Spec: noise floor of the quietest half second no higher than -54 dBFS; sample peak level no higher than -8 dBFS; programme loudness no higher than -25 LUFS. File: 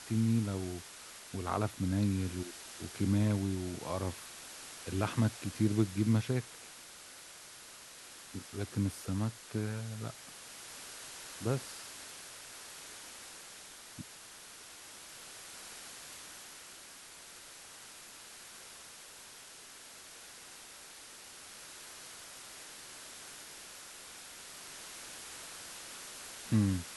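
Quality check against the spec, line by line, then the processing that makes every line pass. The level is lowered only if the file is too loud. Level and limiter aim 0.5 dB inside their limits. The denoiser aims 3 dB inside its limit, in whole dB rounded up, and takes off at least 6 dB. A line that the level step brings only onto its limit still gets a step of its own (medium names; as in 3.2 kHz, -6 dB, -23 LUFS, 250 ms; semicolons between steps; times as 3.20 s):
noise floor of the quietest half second -52 dBFS: fail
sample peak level -16.5 dBFS: pass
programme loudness -38.5 LUFS: pass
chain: noise reduction 6 dB, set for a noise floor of -52 dBFS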